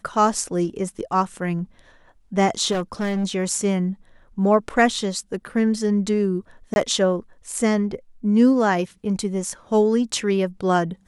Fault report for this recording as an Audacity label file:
2.710000	3.250000	clipped -20 dBFS
6.740000	6.760000	gap 21 ms

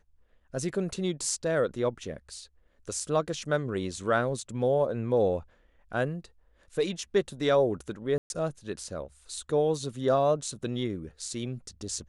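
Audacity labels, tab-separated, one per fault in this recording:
8.180000	8.300000	gap 0.121 s

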